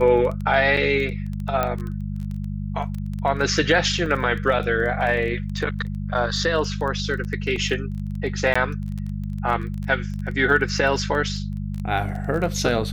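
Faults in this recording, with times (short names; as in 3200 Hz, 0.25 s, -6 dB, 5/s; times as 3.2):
crackle 16/s -28 dBFS
hum 50 Hz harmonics 4 -28 dBFS
1.63 pop -9 dBFS
4.06 gap 2.3 ms
7.56 gap 2.5 ms
8.54–8.55 gap 15 ms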